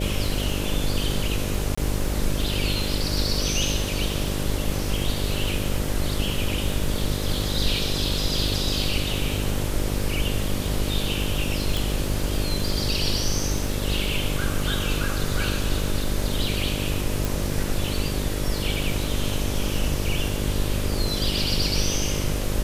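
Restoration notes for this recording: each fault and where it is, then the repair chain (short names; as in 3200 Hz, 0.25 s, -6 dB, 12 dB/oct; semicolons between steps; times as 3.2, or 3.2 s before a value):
buzz 50 Hz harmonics 12 -28 dBFS
crackle 56/s -32 dBFS
1.75–1.77 gap 25 ms
11.77 pop
17.25 pop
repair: de-click; de-hum 50 Hz, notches 12; interpolate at 1.75, 25 ms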